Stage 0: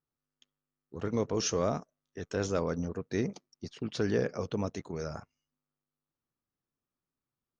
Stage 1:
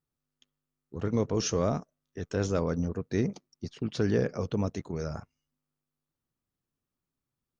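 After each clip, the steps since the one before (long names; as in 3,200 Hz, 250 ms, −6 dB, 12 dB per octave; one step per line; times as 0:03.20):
low-shelf EQ 240 Hz +7 dB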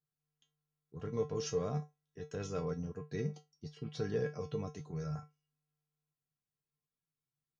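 tuned comb filter 150 Hz, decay 0.19 s, harmonics odd, mix 90%
level +2 dB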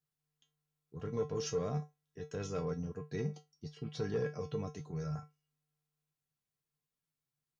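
soft clipping −26 dBFS, distortion −22 dB
level +1 dB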